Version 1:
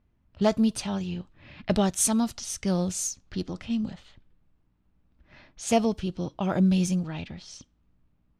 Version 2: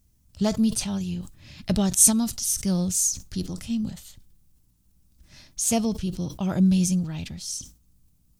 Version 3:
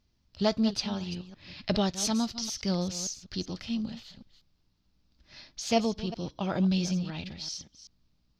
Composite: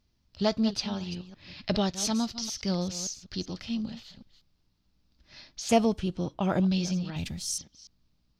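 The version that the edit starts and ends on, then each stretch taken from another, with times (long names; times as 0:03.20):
3
0:05.69–0:06.60: punch in from 1
0:07.16–0:07.58: punch in from 2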